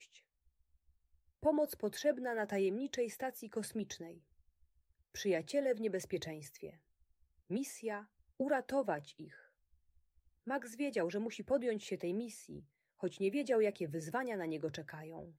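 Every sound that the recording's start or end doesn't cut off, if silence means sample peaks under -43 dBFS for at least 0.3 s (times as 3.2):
1.43–4.11
5.16–6.7
7.51–8.01
8.4–9.24
10.47–12.59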